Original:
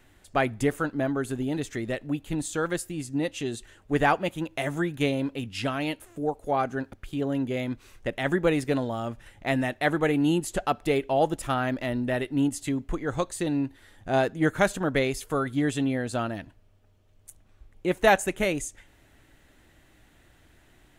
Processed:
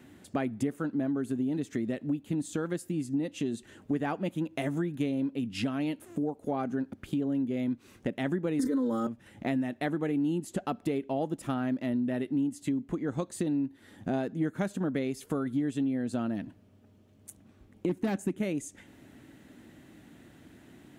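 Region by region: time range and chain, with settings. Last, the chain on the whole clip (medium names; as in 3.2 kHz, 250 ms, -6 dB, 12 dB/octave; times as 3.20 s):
8.59–9.07 s: static phaser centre 710 Hz, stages 6 + comb 3.9 ms, depth 99% + level flattener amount 100%
17.89–18.40 s: resonant low shelf 410 Hz +6.5 dB, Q 1.5 + overload inside the chain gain 16.5 dB
whole clip: high-pass 86 Hz; peaking EQ 230 Hz +14 dB 1.5 oct; compression 4:1, threshold -30 dBFS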